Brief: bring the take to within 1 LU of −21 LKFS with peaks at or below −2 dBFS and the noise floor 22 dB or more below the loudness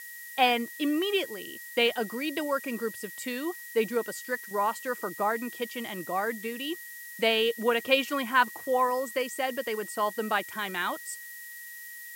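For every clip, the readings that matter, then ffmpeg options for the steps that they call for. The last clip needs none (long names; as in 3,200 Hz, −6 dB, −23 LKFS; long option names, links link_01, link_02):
interfering tone 1,900 Hz; level of the tone −43 dBFS; background noise floor −44 dBFS; target noise floor −51 dBFS; integrated loudness −29.0 LKFS; sample peak −8.5 dBFS; target loudness −21.0 LKFS
→ -af "bandreject=frequency=1900:width=30"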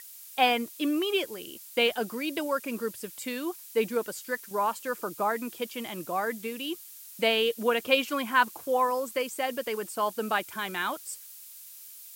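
interfering tone none found; background noise floor −47 dBFS; target noise floor −51 dBFS
→ -af "afftdn=noise_reduction=6:noise_floor=-47"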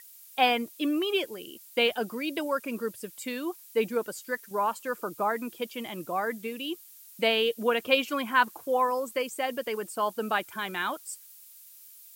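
background noise floor −52 dBFS; integrated loudness −29.5 LKFS; sample peak −9.0 dBFS; target loudness −21.0 LKFS
→ -af "volume=8.5dB,alimiter=limit=-2dB:level=0:latency=1"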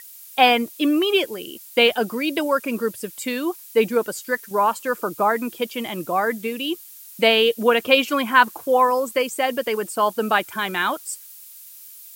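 integrated loudness −21.0 LKFS; sample peak −2.0 dBFS; background noise floor −43 dBFS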